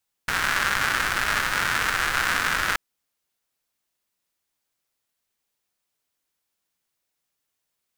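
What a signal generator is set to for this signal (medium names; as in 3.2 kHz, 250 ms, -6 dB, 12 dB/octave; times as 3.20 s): rain from filtered ticks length 2.48 s, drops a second 260, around 1.5 kHz, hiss -10.5 dB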